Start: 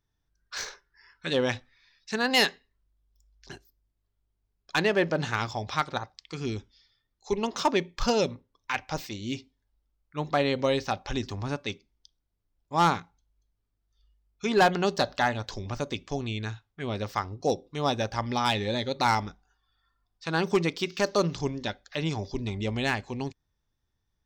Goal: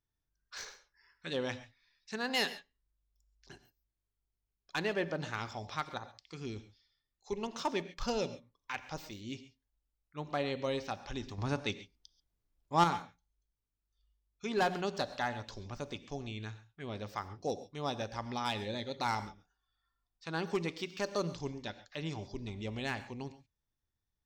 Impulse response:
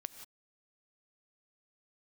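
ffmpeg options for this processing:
-filter_complex "[0:a]asettb=1/sr,asplit=3[a][b][c];[a]atrim=end=11.384[d];[b]atrim=start=11.38:end=12.84,asetpts=PTS-STARTPTS,afade=t=in:d=0.004:c=qsin,afade=t=out:st=1.456:d=0.004:c=qsin,acontrast=89[e];[c]atrim=start=12.836[f];[d][e]acrossfade=d=0.004:c1=hsin:c2=qsin[g];[g][f]acrossfade=d=0.004:c1=qsin:c2=hsin[h];[1:a]atrim=start_sample=2205,afade=t=out:st=0.19:d=0.01,atrim=end_sample=8820[i];[h][i]afir=irnorm=-1:irlink=0,volume=-6dB"

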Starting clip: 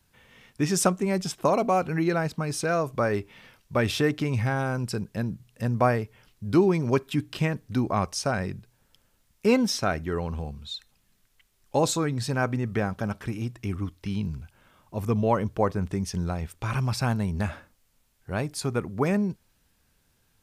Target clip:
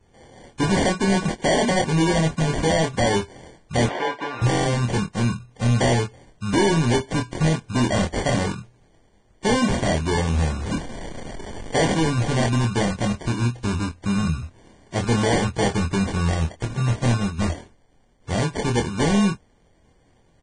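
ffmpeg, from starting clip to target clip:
-filter_complex "[0:a]asettb=1/sr,asplit=3[a][b][c];[a]atrim=end=10.344[d];[b]atrim=start=10.34:end=11.81,asetpts=PTS-STARTPTS,afade=t=in:d=0.004:c=qsin,afade=t=out:st=1.466:d=0.004:c=qsin,aeval=exprs='val(0)+0.5*0.0168*sgn(val(0))':c=same[e];[c]atrim=start=11.806[f];[d][e]acrossfade=d=0.004:c1=hsin:c2=qsin[g];[g][f]acrossfade=d=0.004:c1=qsin:c2=hsin,asplit=3[h][i][j];[h]afade=t=out:st=16.64:d=0.02[k];[i]agate=range=-13dB:threshold=-25dB:ratio=16:detection=peak,afade=t=in:st=16.64:d=0.02,afade=t=out:st=17.38:d=0.02[l];[j]afade=t=in:st=17.38:d=0.02[m];[k][l][m]amix=inputs=3:normalize=0,acrusher=samples=34:mix=1:aa=0.000001,asoftclip=type=hard:threshold=-24.5dB,asettb=1/sr,asplit=3[n][o][p];[n]atrim=end=3.864[q];[o]atrim=start=3.86:end=4.42,asetpts=PTS-STARTPTS,afade=t=in:d=0.004:c=qsin,afade=t=out:st=0.556:d=0.004:c=qsin,highpass=510,lowpass=2.7k[r];[p]atrim=start=4.416[s];[q][r]acrossfade=d=0.004:c1=hsin:c2=qsin[t];[t][s]acrossfade=d=0.004:c1=qsin:c2=hsin,asplit=2[u][v];[v]adelay=25,volume=-5dB[w];[u][w]amix=inputs=2:normalize=0,volume=7dB" -ar 22050 -c:a libvorbis -b:a 16k

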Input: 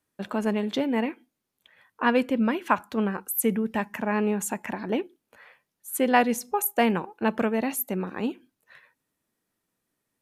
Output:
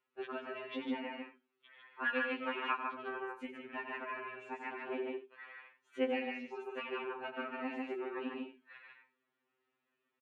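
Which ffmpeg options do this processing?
-filter_complex "[0:a]highpass=300,equalizer=f=370:t=q:w=4:g=4,equalizer=f=620:t=q:w=4:g=-6,equalizer=f=1.3k:t=q:w=4:g=5,equalizer=f=2.6k:t=q:w=4:g=5,lowpass=f=3.2k:w=0.5412,lowpass=f=3.2k:w=1.3066,asplit=2[a][b];[b]aecho=0:1:91|148|194|224:0.376|0.708|0.141|0.126[c];[a][c]amix=inputs=2:normalize=0,acompressor=threshold=-40dB:ratio=2,asettb=1/sr,asplit=3[d][e][f];[d]atrim=end=2.064[g];[e]atrim=start=2.06:end=2.77,asetpts=PTS-STARTPTS,afade=t=in:d=0.004:c=qsin,afade=t=out:st=0.706:d=0.004:c=qsin,tiltshelf=f=650:g=-6.5[h];[f]atrim=start=2.766[i];[g][h]acrossfade=d=0.004:c1=hsin:c2=qsin[j];[j][i]acrossfade=d=0.004:c1=qsin:c2=hsin,afftfilt=real='re*2.45*eq(mod(b,6),0)':imag='im*2.45*eq(mod(b,6),0)':win_size=2048:overlap=0.75,volume=-1dB"

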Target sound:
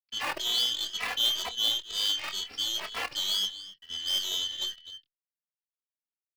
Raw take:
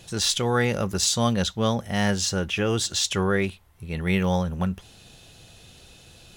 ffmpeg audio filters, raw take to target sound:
-filter_complex "[0:a]afftfilt=real='real(if(lt(b,272),68*(eq(floor(b/68),0)*2+eq(floor(b/68),1)*3+eq(floor(b/68),2)*0+eq(floor(b/68),3)*1)+mod(b,68),b),0)':imag='imag(if(lt(b,272),68*(eq(floor(b/68),0)*2+eq(floor(b/68),1)*3+eq(floor(b/68),2)*0+eq(floor(b/68),3)*1)+mod(b,68),b),0)':win_size=2048:overlap=0.75,aresample=11025,aeval=exprs='sgn(val(0))*max(abs(val(0))-0.0158,0)':c=same,aresample=44100,lowshelf=f=280:g=-5,asplit=2[a][b];[b]adelay=25,volume=-10dB[c];[a][c]amix=inputs=2:normalize=0,aecho=1:1:254:0.2,aeval=exprs='0.376*(cos(1*acos(clip(val(0)/0.376,-1,1)))-cos(1*PI/2))+0.0376*(cos(6*acos(clip(val(0)/0.376,-1,1)))-cos(6*PI/2))+0.0596*(cos(8*acos(clip(val(0)/0.376,-1,1)))-cos(8*PI/2))':c=same,highpass=f=51:w=0.5412,highpass=f=51:w=1.3066,acrossover=split=320|1900[d][e][f];[d]acompressor=threshold=-54dB:ratio=8[g];[e]acrusher=bits=6:dc=4:mix=0:aa=0.000001[h];[g][h][f]amix=inputs=3:normalize=0,asplit=2[i][j];[j]adelay=2.7,afreqshift=2.1[k];[i][k]amix=inputs=2:normalize=1,volume=-2.5dB"

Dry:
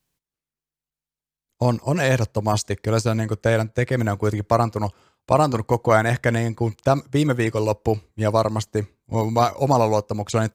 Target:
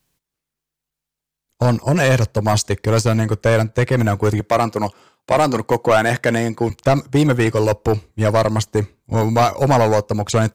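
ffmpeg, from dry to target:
-filter_complex "[0:a]asettb=1/sr,asplit=3[a][b][c];[a]atrim=end=4.404[d];[b]atrim=start=4.4:end=6.7,asetpts=PTS-STARTPTS,afade=t=in:d=0.004:c=qsin,afade=t=out:st=2.296:d=0.004:c=qsin,highpass=170[e];[c]atrim=start=6.696[f];[d][e]acrossfade=d=0.004:c1=hsin:c2=qsin[g];[g][f]acrossfade=d=0.004:c1=qsin:c2=hsin,asoftclip=type=tanh:threshold=-14.5dB,volume=7dB"

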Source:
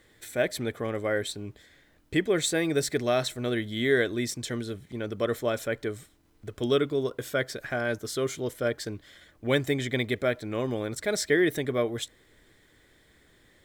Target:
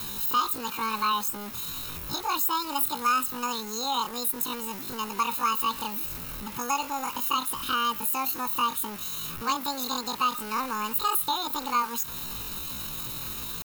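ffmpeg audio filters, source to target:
-filter_complex "[0:a]aeval=exprs='val(0)+0.5*0.0188*sgn(val(0))':c=same,highshelf=f=6.4k:g=-2.5,aecho=1:1:1.5:1,acrossover=split=430|860[a][b][c];[a]acompressor=threshold=-37dB:ratio=4[d];[b]acompressor=threshold=-24dB:ratio=4[e];[c]acompressor=threshold=-31dB:ratio=4[f];[d][e][f]amix=inputs=3:normalize=0,aeval=exprs='val(0)*gte(abs(val(0)),0.0126)':c=same,asetrate=88200,aresample=44100,atempo=0.5,aexciter=amount=2.7:drive=7:freq=11k"

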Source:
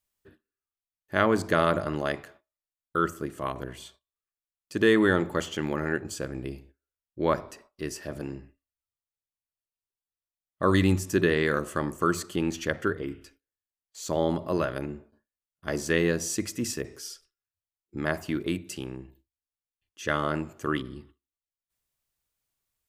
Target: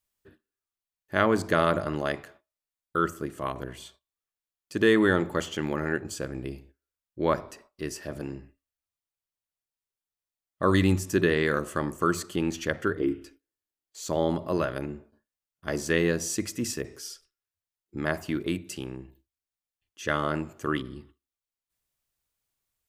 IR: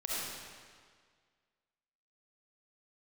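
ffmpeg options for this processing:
-filter_complex "[0:a]asettb=1/sr,asplit=3[a][b][c];[a]atrim=end=12.974[d];[b]atrim=start=12.97:end=14,asetpts=PTS-STARTPTS,afade=t=in:d=0.004:c=qsin,afade=t=out:st=1.026:d=0.004:c=qsin,equalizer=f=320:t=o:w=0.67:g=11[e];[c]atrim=start=13.996[f];[d][e]acrossfade=d=0.004:c1=hsin:c2=qsin[g];[g][f]acrossfade=d=0.004:c1=qsin:c2=hsin"

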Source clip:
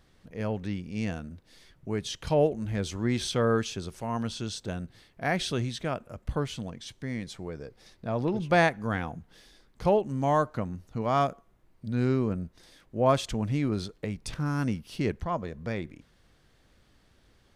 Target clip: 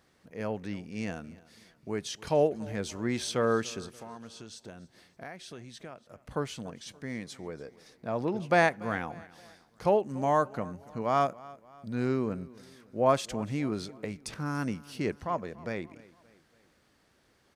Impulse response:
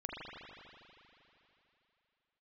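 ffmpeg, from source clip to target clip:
-filter_complex "[0:a]highpass=f=250:p=1,equalizer=f=3.4k:w=2.3:g=-4.5,asettb=1/sr,asplit=3[a][b][c];[a]atrim=end=3.864[d];[b]atrim=start=3.86:end=6.31,asetpts=PTS-STARTPTS,afade=t=in:d=0.004:c=qsin,afade=t=out:st=2.446:d=0.004:c=qsin,acompressor=threshold=-44dB:ratio=4[e];[c]atrim=start=6.306[f];[d][e]acrossfade=d=0.004:c1=hsin:c2=qsin[g];[g][f]acrossfade=d=0.004:c1=qsin:c2=hsin,aecho=1:1:287|574|861:0.0891|0.041|0.0189"

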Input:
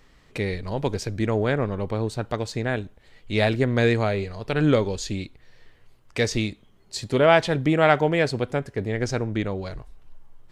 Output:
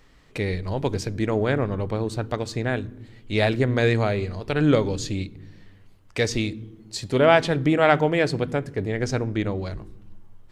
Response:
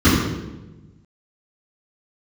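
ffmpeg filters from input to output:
-filter_complex "[0:a]asplit=2[a][b];[1:a]atrim=start_sample=2205[c];[b][c]afir=irnorm=-1:irlink=0,volume=-45dB[d];[a][d]amix=inputs=2:normalize=0"

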